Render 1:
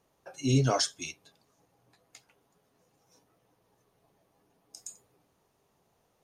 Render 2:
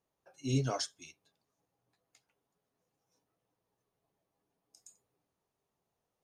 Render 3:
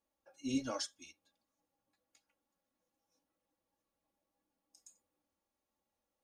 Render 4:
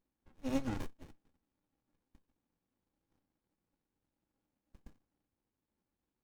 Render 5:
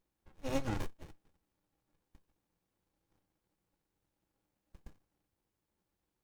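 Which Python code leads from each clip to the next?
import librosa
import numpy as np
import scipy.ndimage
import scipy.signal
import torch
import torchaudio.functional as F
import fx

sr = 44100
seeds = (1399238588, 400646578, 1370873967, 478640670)

y1 = fx.upward_expand(x, sr, threshold_db=-37.0, expansion=1.5)
y1 = F.gain(torch.from_numpy(y1), -5.5).numpy()
y2 = y1 + 0.87 * np.pad(y1, (int(3.6 * sr / 1000.0), 0))[:len(y1)]
y2 = F.gain(torch.from_numpy(y2), -5.5).numpy()
y3 = fx.running_max(y2, sr, window=65)
y3 = F.gain(torch.from_numpy(y3), 4.0).numpy()
y4 = fx.peak_eq(y3, sr, hz=250.0, db=-12.5, octaves=0.24)
y4 = F.gain(torch.from_numpy(y4), 3.5).numpy()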